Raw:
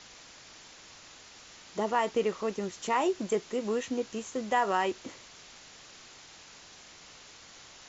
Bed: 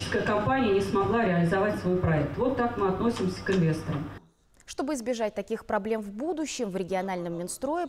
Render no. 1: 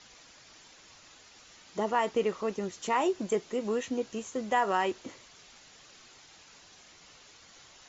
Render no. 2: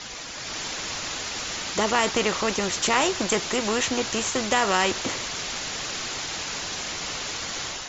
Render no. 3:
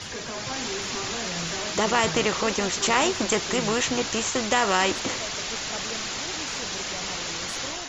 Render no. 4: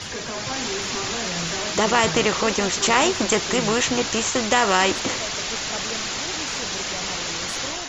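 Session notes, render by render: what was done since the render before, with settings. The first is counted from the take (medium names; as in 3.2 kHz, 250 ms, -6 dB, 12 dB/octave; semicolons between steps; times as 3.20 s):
noise reduction 6 dB, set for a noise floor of -52 dBFS
level rider gain up to 7 dB; spectrum-flattening compressor 2:1
add bed -11 dB
trim +3.5 dB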